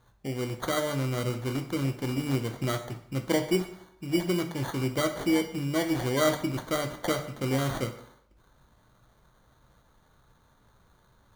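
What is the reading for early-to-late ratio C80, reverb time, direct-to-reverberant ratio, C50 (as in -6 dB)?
13.5 dB, 0.65 s, 6.0 dB, 10.0 dB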